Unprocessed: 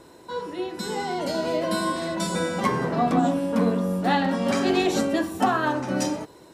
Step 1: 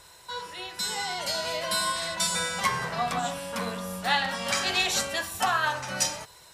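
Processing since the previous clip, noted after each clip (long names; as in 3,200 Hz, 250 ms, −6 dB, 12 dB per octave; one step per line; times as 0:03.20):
guitar amp tone stack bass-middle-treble 10-0-10
level +7.5 dB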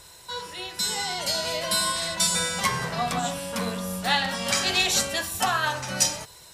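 parametric band 1,200 Hz −5.5 dB 2.7 octaves
level +5.5 dB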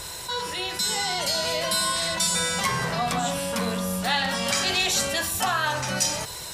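envelope flattener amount 50%
level −3 dB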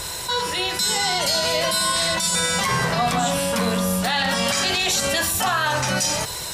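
brickwall limiter −17.5 dBFS, peak gain reduction 8 dB
level +6 dB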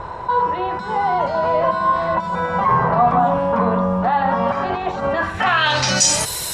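low-pass filter sweep 1,000 Hz → 12,000 Hz, 0:05.10–0:06.30
level +2.5 dB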